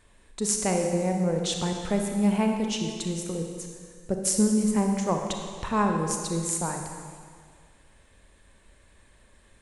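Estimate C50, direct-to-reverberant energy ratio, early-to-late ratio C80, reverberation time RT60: 3.5 dB, 2.5 dB, 5.0 dB, 1.9 s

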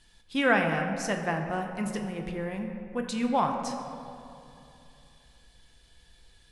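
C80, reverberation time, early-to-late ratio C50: 6.0 dB, 2.8 s, 5.0 dB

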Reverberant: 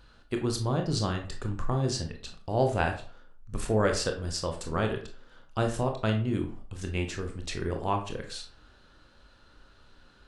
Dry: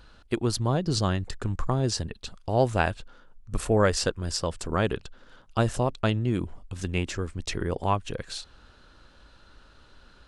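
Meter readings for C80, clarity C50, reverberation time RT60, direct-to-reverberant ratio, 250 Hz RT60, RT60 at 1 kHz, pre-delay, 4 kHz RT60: 13.5 dB, 9.0 dB, 0.45 s, 3.0 dB, 0.40 s, 0.45 s, 20 ms, 0.30 s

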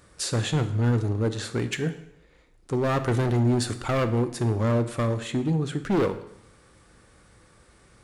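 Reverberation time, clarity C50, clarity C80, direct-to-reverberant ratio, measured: 0.80 s, 12.5 dB, 15.0 dB, 9.5 dB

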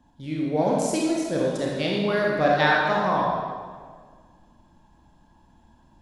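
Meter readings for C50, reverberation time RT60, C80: -1.0 dB, 1.7 s, 1.5 dB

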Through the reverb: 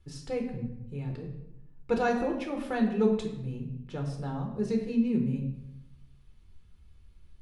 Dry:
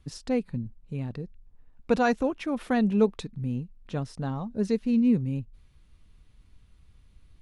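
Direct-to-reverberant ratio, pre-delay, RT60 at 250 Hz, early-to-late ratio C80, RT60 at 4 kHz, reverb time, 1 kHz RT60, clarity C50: 1.5 dB, 5 ms, 1.0 s, 8.5 dB, 0.65 s, 0.85 s, 0.80 s, 6.0 dB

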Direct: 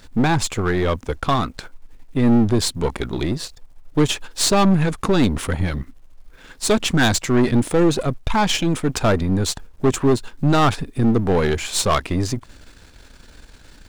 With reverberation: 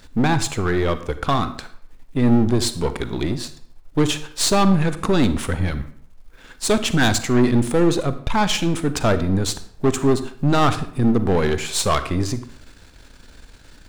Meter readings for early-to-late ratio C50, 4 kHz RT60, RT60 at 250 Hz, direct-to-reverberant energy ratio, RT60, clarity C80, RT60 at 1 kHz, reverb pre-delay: 13.0 dB, 0.45 s, 0.60 s, 11.5 dB, 0.65 s, 16.0 dB, 0.65 s, 37 ms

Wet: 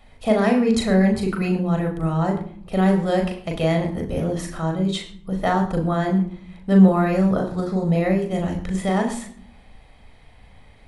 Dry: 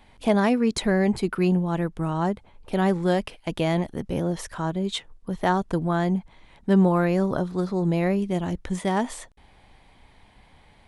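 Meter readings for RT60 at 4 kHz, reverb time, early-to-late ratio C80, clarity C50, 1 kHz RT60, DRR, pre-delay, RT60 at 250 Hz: 0.40 s, 0.55 s, 12.5 dB, 10.0 dB, 0.50 s, 2.0 dB, 37 ms, 1.0 s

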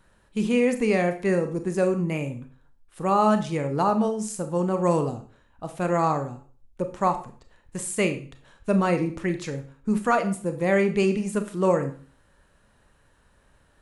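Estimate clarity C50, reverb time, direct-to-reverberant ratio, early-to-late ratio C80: 11.0 dB, 0.40 s, 7.5 dB, 15.5 dB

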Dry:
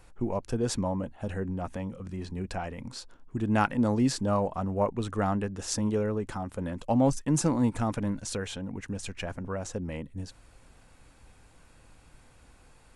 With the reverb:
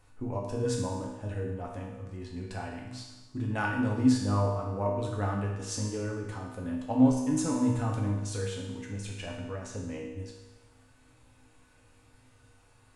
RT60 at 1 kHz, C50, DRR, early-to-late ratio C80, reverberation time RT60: 1.1 s, 2.5 dB, -2.5 dB, 5.0 dB, 1.1 s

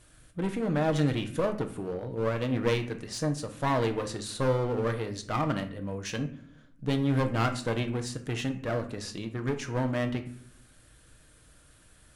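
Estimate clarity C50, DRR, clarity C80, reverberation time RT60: 12.0 dB, 6.0 dB, 16.0 dB, not exponential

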